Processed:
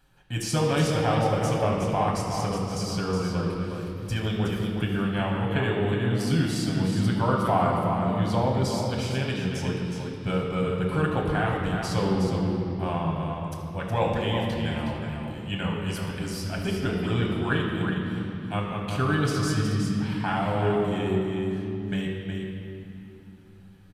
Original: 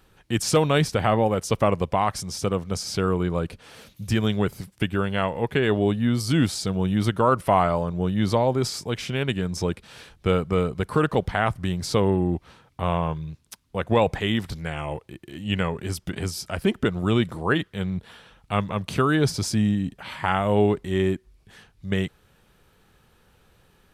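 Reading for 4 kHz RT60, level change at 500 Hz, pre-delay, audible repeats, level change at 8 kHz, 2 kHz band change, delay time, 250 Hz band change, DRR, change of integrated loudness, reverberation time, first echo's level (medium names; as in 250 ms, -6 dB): 2.2 s, -3.5 dB, 7 ms, 1, -4.5 dB, -2.0 dB, 366 ms, -1.5 dB, -3.0 dB, -2.5 dB, 2.9 s, -6.5 dB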